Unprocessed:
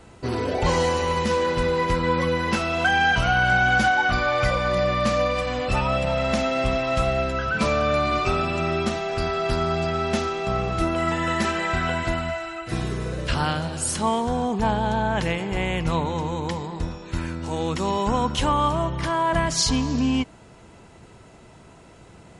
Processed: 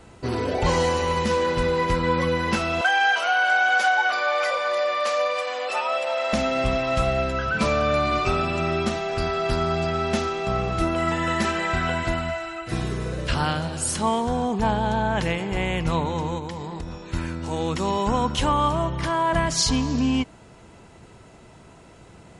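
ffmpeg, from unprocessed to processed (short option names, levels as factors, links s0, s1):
-filter_complex "[0:a]asettb=1/sr,asplit=3[s0][s1][s2];[s0]atrim=end=2.814[s3];[s1]atrim=start=2.81:end=6.33,asetpts=PTS-STARTPTS,afade=t=in:d=0.004:c=qsin,afade=t=out:st=3.516:d=0.004:c=qsin,highpass=f=470:w=0.5412,highpass=f=470:w=1.3066[s4];[s2]atrim=start=6.326[s5];[s3][s4]acrossfade=d=0.004:c1=hsin:c2=qsin[s6];[s6][s5]acrossfade=d=0.004:c1=qsin:c2=hsin,asettb=1/sr,asplit=3[s7][s8][s9];[s7]atrim=end=16.384[s10];[s8]atrim=start=16.38:end=16.98,asetpts=PTS-STARTPTS,afade=t=in:d=0.004:c=qsin,afade=t=out:st=0.596:d=0.004:c=qsin,acompressor=threshold=0.0398:ratio=6:attack=3.2:release=140:knee=1:detection=peak[s11];[s9]atrim=start=16.976[s12];[s10][s11]acrossfade=d=0.004:c1=hsin:c2=qsin[s13];[s13][s12]acrossfade=d=0.004:c1=qsin:c2=hsin"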